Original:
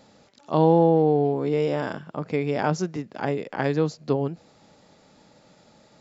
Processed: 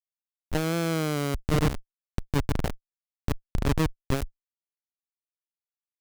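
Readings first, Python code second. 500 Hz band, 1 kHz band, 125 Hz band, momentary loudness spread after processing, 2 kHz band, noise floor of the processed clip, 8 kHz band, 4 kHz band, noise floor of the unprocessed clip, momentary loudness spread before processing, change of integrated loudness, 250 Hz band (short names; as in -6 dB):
-11.0 dB, -9.0 dB, -1.5 dB, 13 LU, -1.5 dB, under -85 dBFS, n/a, +4.0 dB, -57 dBFS, 13 LU, -5.5 dB, -5.5 dB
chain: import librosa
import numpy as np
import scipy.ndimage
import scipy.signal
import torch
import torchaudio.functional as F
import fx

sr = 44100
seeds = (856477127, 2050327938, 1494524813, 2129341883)

y = x + 10.0 ** (-14.0 / 20.0) * np.pad(x, (int(964 * sr / 1000.0), 0))[:len(x)]
y = fx.schmitt(y, sr, flips_db=-18.5)
y = fx.cheby_harmonics(y, sr, harmonics=(8,), levels_db=(-7,), full_scale_db=-18.5)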